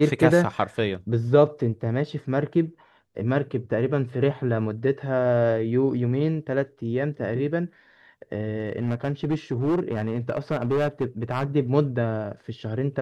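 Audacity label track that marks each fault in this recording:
8.600000	11.450000	clipping −19 dBFS

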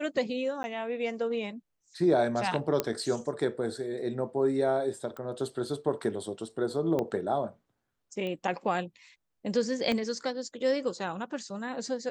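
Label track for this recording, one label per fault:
0.630000	0.640000	drop-out 10 ms
2.800000	2.800000	click −12 dBFS
5.170000	5.170000	click −28 dBFS
6.990000	6.990000	click −18 dBFS
8.270000	8.270000	click −25 dBFS
9.920000	9.920000	click −17 dBFS

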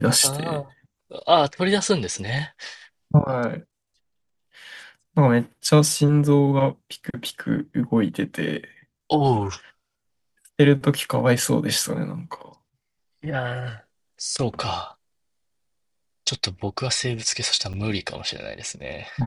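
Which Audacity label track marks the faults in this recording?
17.730000	17.740000	drop-out 8.2 ms

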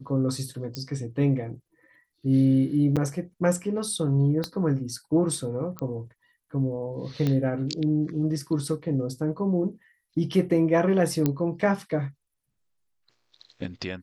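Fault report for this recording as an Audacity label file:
0.750000	0.750000	click −18 dBFS
2.960000	2.970000	drop-out 6.8 ms
4.440000	4.440000	click −15 dBFS
5.790000	5.790000	click −18 dBFS
7.270000	7.270000	click −14 dBFS
11.260000	11.260000	click −10 dBFS

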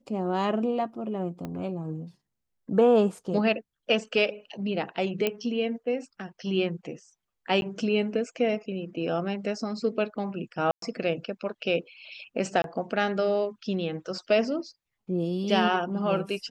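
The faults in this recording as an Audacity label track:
1.450000	1.450000	click −22 dBFS
5.270000	5.270000	click −12 dBFS
7.610000	7.620000	drop-out
10.710000	10.820000	drop-out 113 ms
12.620000	12.640000	drop-out 22 ms

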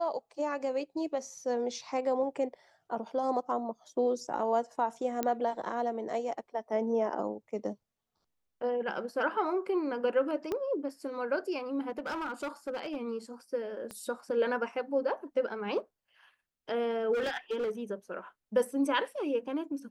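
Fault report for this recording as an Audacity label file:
5.230000	5.230000	click −16 dBFS
10.520000	10.520000	click −21 dBFS
11.890000	12.970000	clipping −31 dBFS
13.910000	13.910000	click −27 dBFS
17.130000	17.710000	clipping −28.5 dBFS

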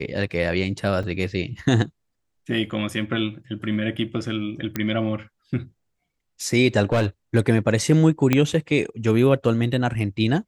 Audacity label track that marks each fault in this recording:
1.030000	1.040000	drop-out 5.4 ms
4.760000	4.760000	click −11 dBFS
6.920000	7.060000	clipping −15 dBFS
8.330000	8.330000	click −5 dBFS

